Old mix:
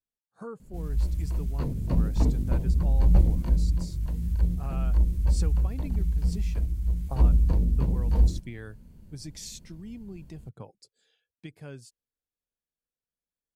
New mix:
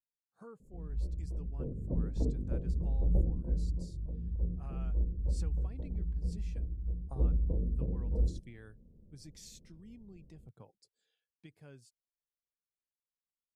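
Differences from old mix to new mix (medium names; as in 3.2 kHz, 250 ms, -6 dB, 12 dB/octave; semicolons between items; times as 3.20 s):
speech -11.5 dB; background: add four-pole ladder low-pass 570 Hz, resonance 50%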